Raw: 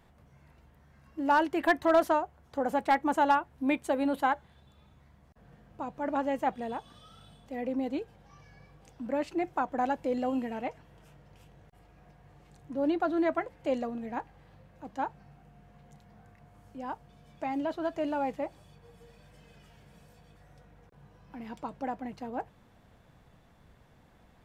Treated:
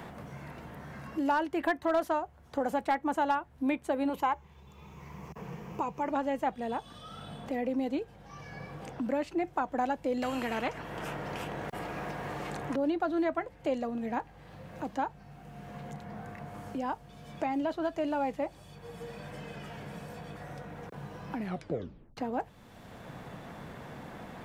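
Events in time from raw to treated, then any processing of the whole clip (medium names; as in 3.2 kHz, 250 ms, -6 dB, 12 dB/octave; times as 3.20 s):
4.09–6.11 s: rippled EQ curve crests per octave 0.77, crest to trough 10 dB
10.22–12.76 s: spectrum-flattening compressor 2:1
21.36 s: tape stop 0.81 s
whole clip: three bands compressed up and down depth 70%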